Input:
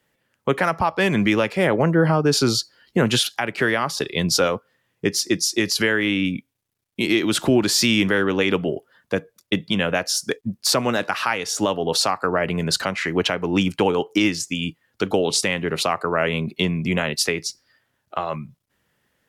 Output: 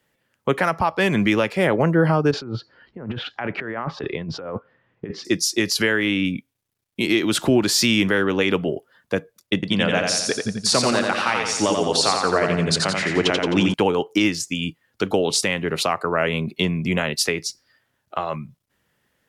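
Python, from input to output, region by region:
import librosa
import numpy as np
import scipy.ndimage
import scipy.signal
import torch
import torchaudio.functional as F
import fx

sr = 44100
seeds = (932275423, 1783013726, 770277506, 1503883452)

y = fx.chain(x, sr, fx.lowpass(hz=1900.0, slope=12),
    fx.env_lowpass_down(base_hz=1300.0, full_db=-15.0),
    fx.over_compress(threshold_db=-29.0, ratio=-1.0), at=(2.31, 5.25))
y = fx.chain(y, sr, fx.steep_lowpass(hz=10000.0, slope=36),
    fx.echo_feedback(ms=87, feedback_pct=53, wet_db=-4), at=(9.54, 13.74))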